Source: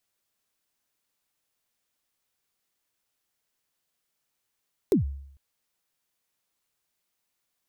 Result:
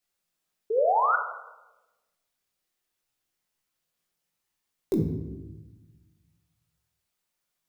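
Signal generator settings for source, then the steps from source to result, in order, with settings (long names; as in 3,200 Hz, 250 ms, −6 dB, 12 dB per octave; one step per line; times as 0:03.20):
synth kick length 0.45 s, from 450 Hz, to 69 Hz, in 123 ms, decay 0.70 s, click on, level −15 dB
multi-voice chorus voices 2, 0.62 Hz, delay 21 ms, depth 3.1 ms
sound drawn into the spectrogram rise, 0:00.70–0:01.16, 420–1,500 Hz −24 dBFS
rectangular room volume 540 cubic metres, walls mixed, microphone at 0.94 metres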